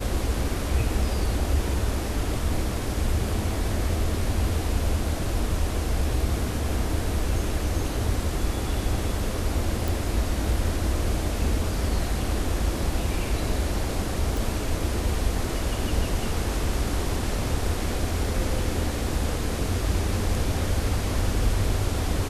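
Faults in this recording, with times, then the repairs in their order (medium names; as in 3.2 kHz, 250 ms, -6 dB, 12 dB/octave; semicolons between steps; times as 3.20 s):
9.88 s: pop
14.37 s: pop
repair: de-click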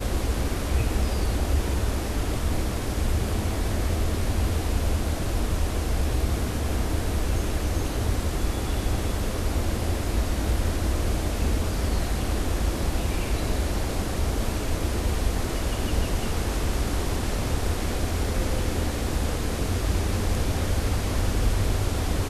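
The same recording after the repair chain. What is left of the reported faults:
nothing left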